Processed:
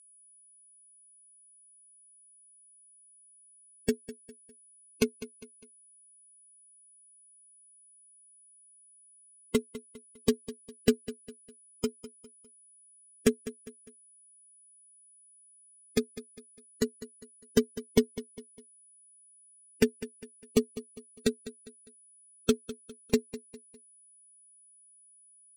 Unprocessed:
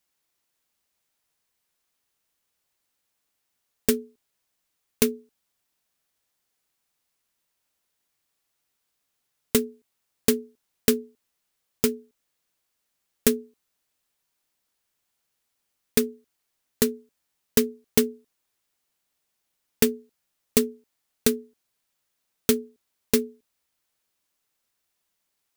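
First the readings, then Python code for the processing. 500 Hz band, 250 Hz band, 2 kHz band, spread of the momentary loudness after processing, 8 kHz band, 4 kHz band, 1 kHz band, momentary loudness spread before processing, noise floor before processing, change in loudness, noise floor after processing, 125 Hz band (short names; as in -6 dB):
-4.0 dB, -4.0 dB, -6.0 dB, 21 LU, -10.0 dB, -7.0 dB, -5.0 dB, 9 LU, -78 dBFS, -6.5 dB, -60 dBFS, -2.5 dB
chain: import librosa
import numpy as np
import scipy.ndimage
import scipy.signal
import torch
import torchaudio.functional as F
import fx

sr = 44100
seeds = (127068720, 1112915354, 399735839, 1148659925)

y = fx.bin_expand(x, sr, power=3.0)
y = y + 10.0 ** (-49.0 / 20.0) * np.sin(2.0 * np.pi * 9900.0 * np.arange(len(y)) / sr)
y = fx.air_absorb(y, sr, metres=52.0)
y = fx.echo_feedback(y, sr, ms=202, feedback_pct=39, wet_db=-15.5)
y = y * 10.0 ** (1.0 / 20.0)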